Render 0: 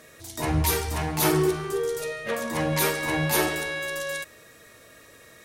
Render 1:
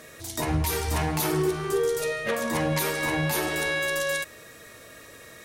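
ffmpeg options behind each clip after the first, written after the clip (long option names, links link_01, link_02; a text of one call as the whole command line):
ffmpeg -i in.wav -af "alimiter=limit=-20dB:level=0:latency=1:release=280,volume=4dB" out.wav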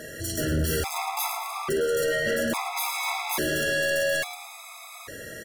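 ffmpeg -i in.wav -filter_complex "[0:a]volume=31.5dB,asoftclip=hard,volume=-31.5dB,asplit=6[link_01][link_02][link_03][link_04][link_05][link_06];[link_02]adelay=109,afreqshift=83,volume=-10.5dB[link_07];[link_03]adelay=218,afreqshift=166,volume=-17.4dB[link_08];[link_04]adelay=327,afreqshift=249,volume=-24.4dB[link_09];[link_05]adelay=436,afreqshift=332,volume=-31.3dB[link_10];[link_06]adelay=545,afreqshift=415,volume=-38.2dB[link_11];[link_01][link_07][link_08][link_09][link_10][link_11]amix=inputs=6:normalize=0,afftfilt=real='re*gt(sin(2*PI*0.59*pts/sr)*(1-2*mod(floor(b*sr/1024/670),2)),0)':imag='im*gt(sin(2*PI*0.59*pts/sr)*(1-2*mod(floor(b*sr/1024/670),2)),0)':win_size=1024:overlap=0.75,volume=8.5dB" out.wav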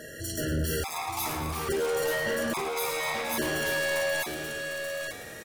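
ffmpeg -i in.wav -af "aecho=1:1:883:0.501,volume=-3.5dB" out.wav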